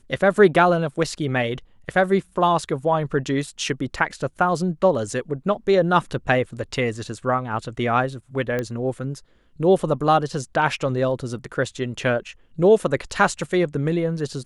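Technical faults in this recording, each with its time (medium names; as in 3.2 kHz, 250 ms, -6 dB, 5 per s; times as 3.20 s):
8.59 s: pop -13 dBFS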